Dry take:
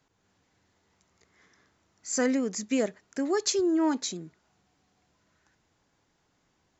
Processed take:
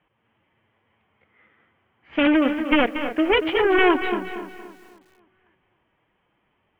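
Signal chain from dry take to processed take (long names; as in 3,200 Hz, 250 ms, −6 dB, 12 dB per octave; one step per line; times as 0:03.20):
harmonic generator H 3 −13 dB, 4 −40 dB, 7 −30 dB, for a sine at −13.5 dBFS
in parallel at −5 dB: sine wavefolder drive 17 dB, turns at −13 dBFS
on the sum: phase-vocoder pitch shift with formants kept +2.5 semitones
Chebyshev low-pass with heavy ripple 3,200 Hz, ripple 3 dB
high-shelf EQ 2,100 Hz +6.5 dB
on a send: delay with a low-pass on its return 264 ms, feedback 41%, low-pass 2,300 Hz, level −12.5 dB
on the sum: feedback echo at a low word length 233 ms, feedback 35%, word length 9 bits, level −10 dB
level +6 dB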